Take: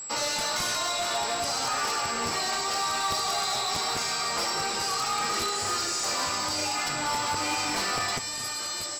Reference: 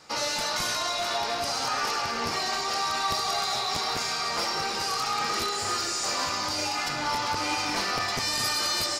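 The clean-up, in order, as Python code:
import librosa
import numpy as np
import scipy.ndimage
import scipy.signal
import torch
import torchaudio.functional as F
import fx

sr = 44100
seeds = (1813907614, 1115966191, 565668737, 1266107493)

y = fx.fix_declip(x, sr, threshold_db=-22.5)
y = fx.notch(y, sr, hz=7700.0, q=30.0)
y = fx.fix_level(y, sr, at_s=8.18, step_db=7.0)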